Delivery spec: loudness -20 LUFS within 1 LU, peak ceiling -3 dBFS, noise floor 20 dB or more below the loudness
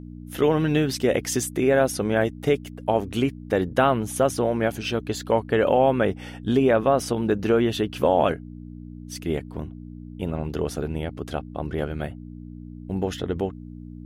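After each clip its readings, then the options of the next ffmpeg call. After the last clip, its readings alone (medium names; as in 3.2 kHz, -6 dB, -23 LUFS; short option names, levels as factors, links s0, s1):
hum 60 Hz; highest harmonic 300 Hz; hum level -36 dBFS; loudness -24.0 LUFS; peak level -8.0 dBFS; loudness target -20.0 LUFS
-> -af "bandreject=f=60:t=h:w=4,bandreject=f=120:t=h:w=4,bandreject=f=180:t=h:w=4,bandreject=f=240:t=h:w=4,bandreject=f=300:t=h:w=4"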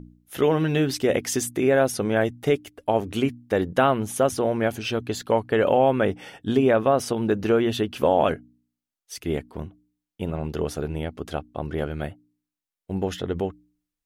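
hum not found; loudness -24.0 LUFS; peak level -8.0 dBFS; loudness target -20.0 LUFS
-> -af "volume=1.58"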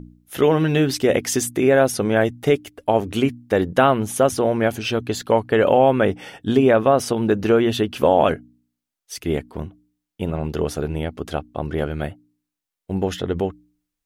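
loudness -20.0 LUFS; peak level -4.0 dBFS; noise floor -84 dBFS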